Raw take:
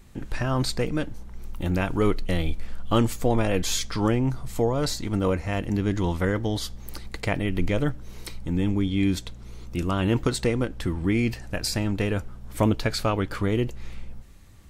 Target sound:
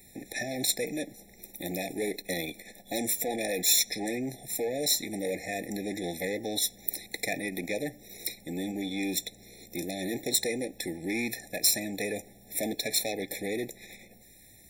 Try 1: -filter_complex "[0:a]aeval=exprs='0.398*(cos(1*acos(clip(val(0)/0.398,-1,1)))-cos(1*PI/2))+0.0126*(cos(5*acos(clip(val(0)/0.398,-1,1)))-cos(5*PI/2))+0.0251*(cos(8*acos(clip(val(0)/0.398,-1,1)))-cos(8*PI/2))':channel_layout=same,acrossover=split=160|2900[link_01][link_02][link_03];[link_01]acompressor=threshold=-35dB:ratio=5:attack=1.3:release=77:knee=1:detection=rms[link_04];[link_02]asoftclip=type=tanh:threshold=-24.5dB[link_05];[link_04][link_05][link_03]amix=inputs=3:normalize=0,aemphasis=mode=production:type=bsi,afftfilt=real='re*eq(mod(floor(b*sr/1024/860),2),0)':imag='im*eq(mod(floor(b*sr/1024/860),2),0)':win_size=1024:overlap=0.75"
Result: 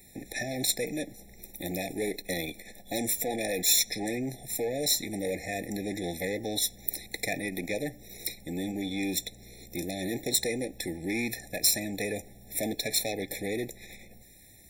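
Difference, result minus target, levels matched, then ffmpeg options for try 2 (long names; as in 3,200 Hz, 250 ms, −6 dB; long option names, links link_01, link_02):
downward compressor: peak gain reduction −9 dB
-filter_complex "[0:a]aeval=exprs='0.398*(cos(1*acos(clip(val(0)/0.398,-1,1)))-cos(1*PI/2))+0.0126*(cos(5*acos(clip(val(0)/0.398,-1,1)))-cos(5*PI/2))+0.0251*(cos(8*acos(clip(val(0)/0.398,-1,1)))-cos(8*PI/2))':channel_layout=same,acrossover=split=160|2900[link_01][link_02][link_03];[link_01]acompressor=threshold=-46.5dB:ratio=5:attack=1.3:release=77:knee=1:detection=rms[link_04];[link_02]asoftclip=type=tanh:threshold=-24.5dB[link_05];[link_04][link_05][link_03]amix=inputs=3:normalize=0,aemphasis=mode=production:type=bsi,afftfilt=real='re*eq(mod(floor(b*sr/1024/860),2),0)':imag='im*eq(mod(floor(b*sr/1024/860),2),0)':win_size=1024:overlap=0.75"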